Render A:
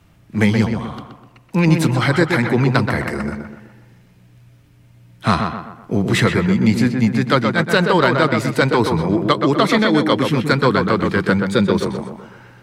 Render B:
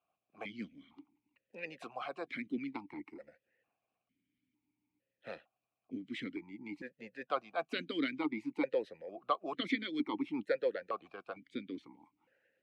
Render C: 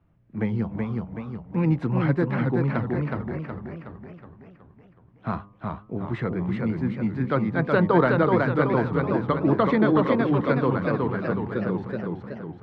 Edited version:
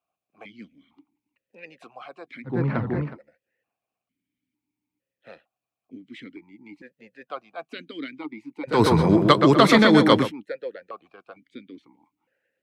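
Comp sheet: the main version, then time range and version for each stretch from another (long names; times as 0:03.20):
B
0:02.52–0:03.09: punch in from C, crossfade 0.16 s
0:08.75–0:10.24: punch in from A, crossfade 0.16 s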